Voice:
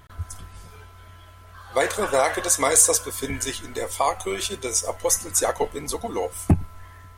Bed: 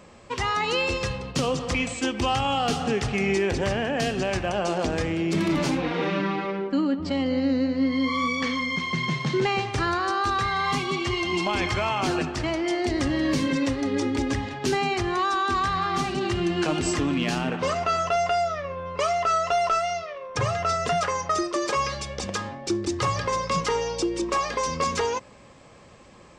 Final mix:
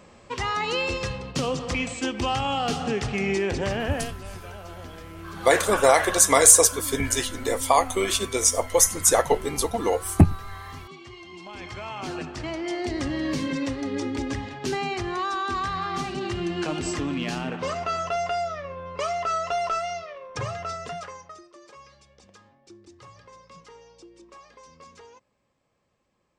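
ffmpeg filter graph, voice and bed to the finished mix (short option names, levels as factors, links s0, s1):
-filter_complex "[0:a]adelay=3700,volume=1.41[s0];[1:a]volume=4.22,afade=t=out:st=3.92:d=0.22:silence=0.158489,afade=t=in:st=11.4:d=1.39:silence=0.199526,afade=t=out:st=20.15:d=1.26:silence=0.1[s1];[s0][s1]amix=inputs=2:normalize=0"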